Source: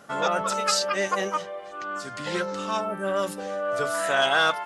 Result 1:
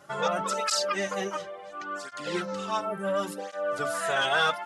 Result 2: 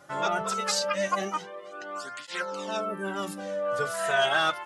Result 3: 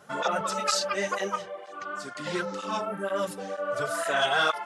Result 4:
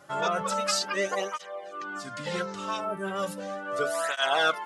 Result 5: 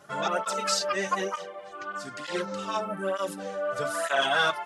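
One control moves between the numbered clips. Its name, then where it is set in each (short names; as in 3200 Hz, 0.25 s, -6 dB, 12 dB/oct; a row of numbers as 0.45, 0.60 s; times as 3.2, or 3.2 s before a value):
tape flanging out of phase, nulls at: 0.71, 0.22, 2.1, 0.36, 1.1 Hz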